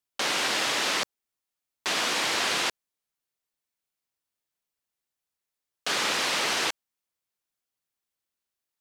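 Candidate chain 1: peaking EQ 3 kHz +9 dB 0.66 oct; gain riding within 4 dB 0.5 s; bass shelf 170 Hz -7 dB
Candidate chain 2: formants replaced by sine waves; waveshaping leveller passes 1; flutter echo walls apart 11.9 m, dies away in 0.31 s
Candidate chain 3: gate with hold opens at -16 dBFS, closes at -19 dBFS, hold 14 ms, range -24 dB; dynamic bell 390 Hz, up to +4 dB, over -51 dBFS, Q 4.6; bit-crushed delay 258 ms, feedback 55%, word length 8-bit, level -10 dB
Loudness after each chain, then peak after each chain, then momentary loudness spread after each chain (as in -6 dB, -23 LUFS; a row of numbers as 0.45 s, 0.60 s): -23.0 LUFS, -24.0 LUFS, -29.5 LUFS; -10.5 dBFS, -15.0 dBFS, -13.5 dBFS; 8 LU, 10 LU, 19 LU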